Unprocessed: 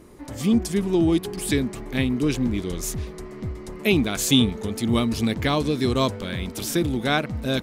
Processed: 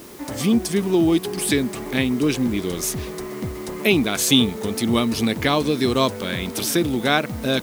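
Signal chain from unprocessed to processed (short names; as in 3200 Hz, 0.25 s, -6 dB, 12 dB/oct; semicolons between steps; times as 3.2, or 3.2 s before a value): HPF 210 Hz 6 dB/oct; notch 7100 Hz, Q 12; in parallel at +0.5 dB: compressor, threshold -32 dBFS, peak gain reduction 17 dB; on the sum: requantised 8-bit, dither triangular; gain +2 dB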